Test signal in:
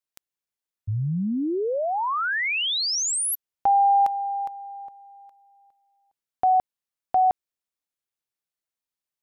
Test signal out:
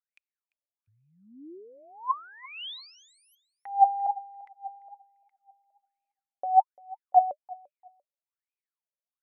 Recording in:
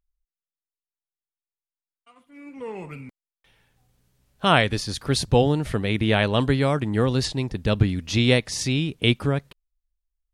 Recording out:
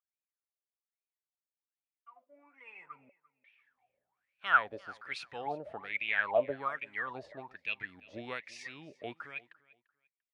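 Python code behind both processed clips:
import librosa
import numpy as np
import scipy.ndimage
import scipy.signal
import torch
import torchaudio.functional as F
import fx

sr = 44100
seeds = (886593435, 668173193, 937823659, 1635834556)

y = fx.wah_lfo(x, sr, hz=1.2, low_hz=560.0, high_hz=2500.0, q=16.0)
y = fx.echo_feedback(y, sr, ms=344, feedback_pct=23, wet_db=-22.0)
y = y * librosa.db_to_amplitude(7.0)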